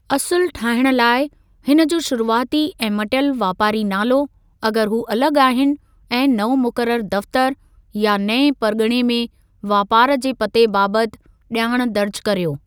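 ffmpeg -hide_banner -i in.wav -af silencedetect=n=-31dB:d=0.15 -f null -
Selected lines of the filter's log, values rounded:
silence_start: 1.27
silence_end: 1.67 | silence_duration: 0.40
silence_start: 4.26
silence_end: 4.63 | silence_duration: 0.37
silence_start: 5.76
silence_end: 6.11 | silence_duration: 0.35
silence_start: 7.53
silence_end: 7.95 | silence_duration: 0.42
silence_start: 9.26
silence_end: 9.64 | silence_duration: 0.38
silence_start: 11.14
silence_end: 11.51 | silence_duration: 0.37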